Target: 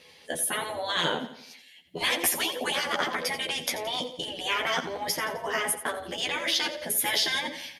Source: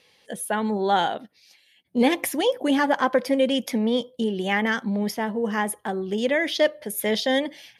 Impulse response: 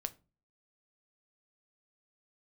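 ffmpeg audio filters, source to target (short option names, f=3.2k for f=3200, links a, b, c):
-filter_complex "[0:a]afftfilt=real='re*lt(hypot(re,im),0.158)':imag='im*lt(hypot(re,im),0.158)':win_size=1024:overlap=0.75,asplit=2[a][b];[b]adelay=12,volume=-3dB[c];[a][c]amix=inputs=2:normalize=0,aecho=1:1:86|172|258|344|430:0.224|0.103|0.0474|0.0218|0.01,volume=4dB"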